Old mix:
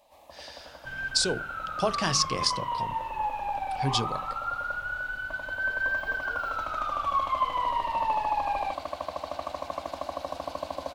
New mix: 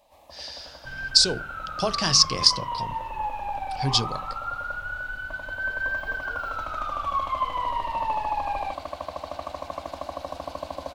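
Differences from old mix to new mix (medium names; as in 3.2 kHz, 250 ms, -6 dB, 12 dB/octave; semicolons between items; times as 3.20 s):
speech: add peaking EQ 4.9 kHz +10 dB 0.85 oct; master: add bass shelf 120 Hz +6.5 dB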